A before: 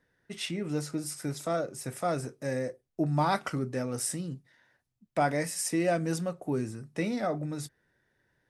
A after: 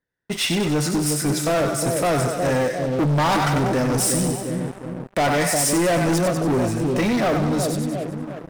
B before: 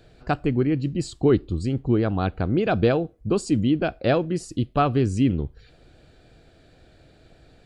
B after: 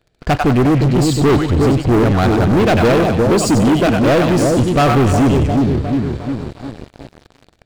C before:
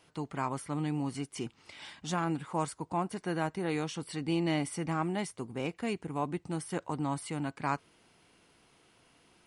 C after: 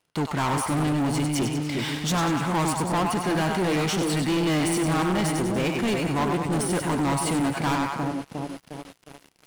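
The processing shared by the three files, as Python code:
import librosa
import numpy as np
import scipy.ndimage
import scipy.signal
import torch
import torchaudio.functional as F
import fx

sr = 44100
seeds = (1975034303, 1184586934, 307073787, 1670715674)

y = fx.echo_split(x, sr, split_hz=680.0, low_ms=357, high_ms=96, feedback_pct=52, wet_db=-6.5)
y = fx.leveller(y, sr, passes=5)
y = y * 10.0 ** (-2.5 / 20.0)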